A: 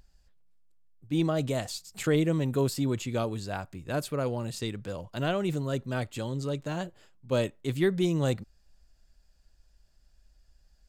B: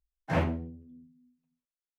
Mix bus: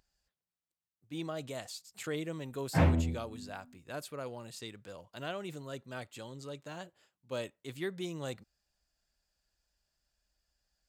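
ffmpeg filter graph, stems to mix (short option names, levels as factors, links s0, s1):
-filter_complex "[0:a]highpass=f=650:p=1,volume=0.447,asplit=2[s0][s1];[1:a]adelay=2450,volume=1.26[s2];[s1]apad=whole_len=195545[s3];[s2][s3]sidechaincompress=threshold=0.00631:ratio=8:attack=16:release=152[s4];[s0][s4]amix=inputs=2:normalize=0,lowshelf=f=130:g=10.5"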